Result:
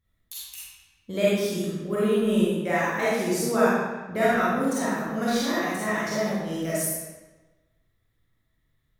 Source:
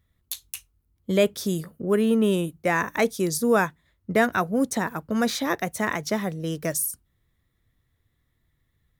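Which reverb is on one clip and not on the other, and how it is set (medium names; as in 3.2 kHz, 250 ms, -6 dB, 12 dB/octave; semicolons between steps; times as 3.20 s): algorithmic reverb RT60 1.2 s, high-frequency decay 0.85×, pre-delay 5 ms, DRR -9.5 dB; trim -10 dB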